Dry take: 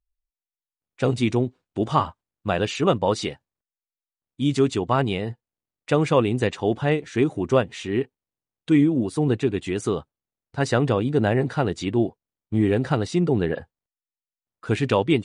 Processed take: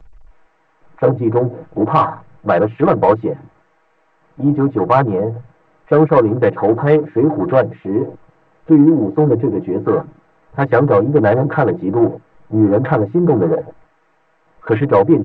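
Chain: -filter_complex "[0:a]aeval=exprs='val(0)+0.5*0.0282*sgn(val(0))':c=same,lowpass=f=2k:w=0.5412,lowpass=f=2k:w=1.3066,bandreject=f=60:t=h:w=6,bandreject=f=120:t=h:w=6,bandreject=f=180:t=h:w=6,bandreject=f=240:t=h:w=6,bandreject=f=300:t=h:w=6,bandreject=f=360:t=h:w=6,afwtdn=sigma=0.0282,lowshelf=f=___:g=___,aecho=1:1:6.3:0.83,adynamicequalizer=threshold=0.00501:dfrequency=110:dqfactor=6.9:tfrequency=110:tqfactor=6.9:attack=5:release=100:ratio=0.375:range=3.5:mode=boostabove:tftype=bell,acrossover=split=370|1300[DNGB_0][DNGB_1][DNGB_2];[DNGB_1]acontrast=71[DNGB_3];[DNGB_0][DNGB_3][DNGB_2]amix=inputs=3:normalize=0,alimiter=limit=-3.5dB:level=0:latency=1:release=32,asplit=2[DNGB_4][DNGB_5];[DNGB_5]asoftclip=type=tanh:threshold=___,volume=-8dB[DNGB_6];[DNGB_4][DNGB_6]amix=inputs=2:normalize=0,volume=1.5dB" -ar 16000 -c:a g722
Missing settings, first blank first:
80, -10.5, -15.5dB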